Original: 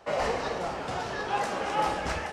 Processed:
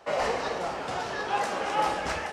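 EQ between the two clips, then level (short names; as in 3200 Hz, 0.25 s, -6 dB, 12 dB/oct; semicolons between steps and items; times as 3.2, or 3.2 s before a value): low shelf 190 Hz -7.5 dB; +1.5 dB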